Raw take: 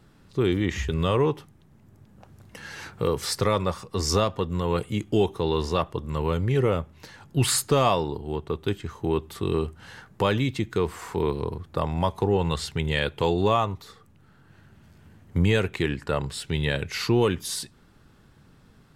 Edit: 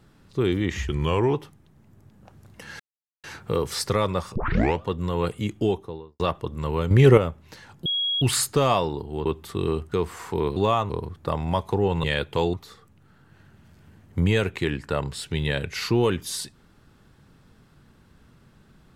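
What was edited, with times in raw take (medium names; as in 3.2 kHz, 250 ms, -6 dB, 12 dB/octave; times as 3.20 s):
0.87–1.29 s: speed 90%
2.75 s: insert silence 0.44 s
3.87 s: tape start 0.48 s
5.02–5.71 s: studio fade out
6.42–6.69 s: gain +8.5 dB
7.37 s: add tone 3.31 kHz -22 dBFS 0.36 s
8.41–9.12 s: delete
9.78–10.74 s: delete
12.53–12.89 s: delete
13.39–13.72 s: move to 11.39 s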